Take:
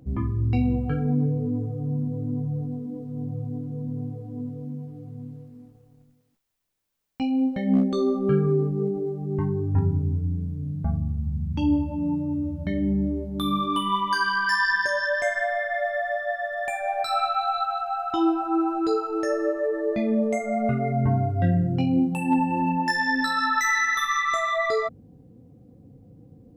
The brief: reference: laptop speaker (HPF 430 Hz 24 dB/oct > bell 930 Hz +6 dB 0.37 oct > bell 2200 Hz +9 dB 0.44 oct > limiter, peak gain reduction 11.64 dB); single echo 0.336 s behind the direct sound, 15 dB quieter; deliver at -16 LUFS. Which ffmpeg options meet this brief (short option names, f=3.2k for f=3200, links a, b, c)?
-af "highpass=f=430:w=0.5412,highpass=f=430:w=1.3066,equalizer=f=930:t=o:w=0.37:g=6,equalizer=f=2.2k:t=o:w=0.44:g=9,aecho=1:1:336:0.178,volume=12.5dB,alimiter=limit=-7.5dB:level=0:latency=1"